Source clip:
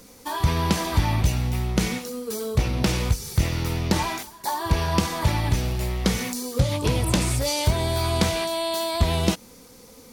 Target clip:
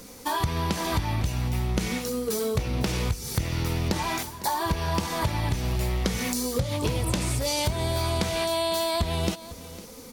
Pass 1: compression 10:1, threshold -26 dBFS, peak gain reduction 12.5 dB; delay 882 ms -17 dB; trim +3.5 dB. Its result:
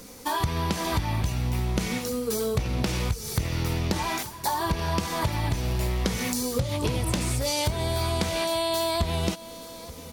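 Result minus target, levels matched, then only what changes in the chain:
echo 377 ms late
change: delay 505 ms -17 dB

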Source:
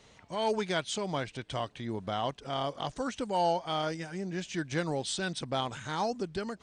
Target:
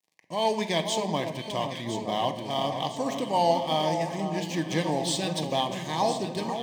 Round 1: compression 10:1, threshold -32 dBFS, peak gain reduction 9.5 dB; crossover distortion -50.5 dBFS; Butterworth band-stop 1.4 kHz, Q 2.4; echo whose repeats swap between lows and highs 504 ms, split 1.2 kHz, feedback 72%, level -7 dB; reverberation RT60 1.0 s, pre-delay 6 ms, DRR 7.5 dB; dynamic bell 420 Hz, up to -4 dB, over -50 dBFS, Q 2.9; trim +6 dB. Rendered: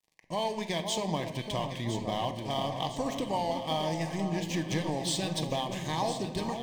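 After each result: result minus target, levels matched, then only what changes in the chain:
compression: peak gain reduction +9.5 dB; 125 Hz band +3.5 dB
remove: compression 10:1, threshold -32 dBFS, peak gain reduction 9.5 dB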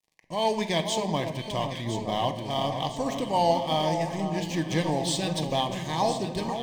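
125 Hz band +2.5 dB
add after dynamic bell: high-pass 150 Hz 12 dB/octave

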